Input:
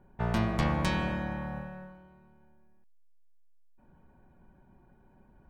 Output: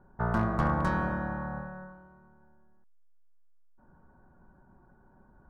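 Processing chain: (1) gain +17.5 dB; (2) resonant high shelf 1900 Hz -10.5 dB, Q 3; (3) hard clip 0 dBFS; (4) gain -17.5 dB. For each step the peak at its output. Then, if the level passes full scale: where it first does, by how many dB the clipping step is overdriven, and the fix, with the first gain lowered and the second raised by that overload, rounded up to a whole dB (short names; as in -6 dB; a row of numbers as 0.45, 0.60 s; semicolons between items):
+2.5, +3.0, 0.0, -17.5 dBFS; step 1, 3.0 dB; step 1 +14.5 dB, step 4 -14.5 dB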